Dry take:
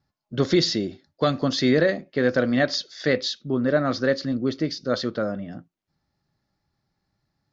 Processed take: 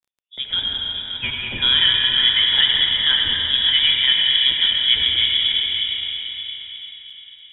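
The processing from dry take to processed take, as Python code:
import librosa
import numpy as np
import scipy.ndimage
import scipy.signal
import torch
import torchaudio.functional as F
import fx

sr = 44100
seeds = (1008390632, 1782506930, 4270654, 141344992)

y = fx.fade_in_head(x, sr, length_s=1.61)
y = fx.highpass(y, sr, hz=890.0, slope=24, at=(0.76, 1.58))
y = fx.rider(y, sr, range_db=3, speed_s=2.0)
y = fx.rev_freeverb(y, sr, rt60_s=4.5, hf_ratio=0.75, predelay_ms=45, drr_db=-1.5)
y = fx.freq_invert(y, sr, carrier_hz=3600)
y = y + 10.0 ** (-8.5 / 20.0) * np.pad(y, (int(573 * sr / 1000.0), 0))[:len(y)]
y = fx.dmg_crackle(y, sr, seeds[0], per_s=12.0, level_db=-51.0)
y = y * 10.0 ** (2.0 / 20.0)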